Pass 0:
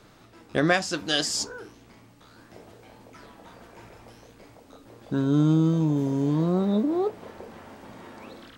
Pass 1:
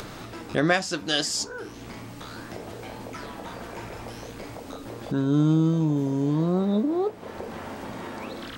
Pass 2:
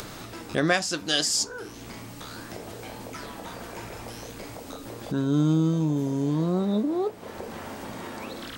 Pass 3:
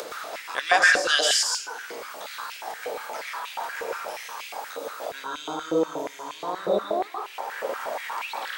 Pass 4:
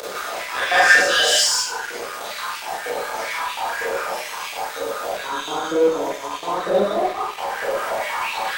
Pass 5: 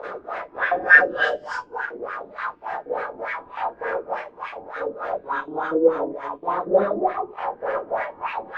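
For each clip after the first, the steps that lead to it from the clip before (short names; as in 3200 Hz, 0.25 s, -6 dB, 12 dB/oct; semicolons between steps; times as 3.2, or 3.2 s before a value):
upward compressor, threshold -26 dBFS
high shelf 5000 Hz +8 dB; gain -1.5 dB
reverb RT60 0.55 s, pre-delay 0.108 s, DRR 0.5 dB; stepped high-pass 8.4 Hz 510–2600 Hz
Schroeder reverb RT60 0.36 s, combs from 31 ms, DRR -6.5 dB; in parallel at -10 dB: fuzz box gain 26 dB, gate -34 dBFS; on the sum: gain -4.5 dB
LFO low-pass sine 3.4 Hz 290–1800 Hz; gain -4 dB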